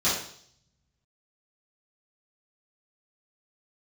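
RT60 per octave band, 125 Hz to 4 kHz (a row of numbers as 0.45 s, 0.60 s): 1.6 s, 0.65 s, 0.60 s, 0.55 s, 0.55 s, 0.70 s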